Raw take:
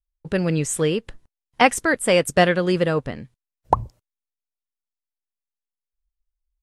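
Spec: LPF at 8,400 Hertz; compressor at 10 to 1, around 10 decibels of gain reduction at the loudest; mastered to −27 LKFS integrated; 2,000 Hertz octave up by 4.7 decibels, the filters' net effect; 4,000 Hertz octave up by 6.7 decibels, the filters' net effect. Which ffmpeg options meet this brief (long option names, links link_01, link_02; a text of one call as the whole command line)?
ffmpeg -i in.wav -af "lowpass=8400,equalizer=frequency=2000:width_type=o:gain=3.5,equalizer=frequency=4000:width_type=o:gain=8.5,acompressor=threshold=-18dB:ratio=10,volume=-2.5dB" out.wav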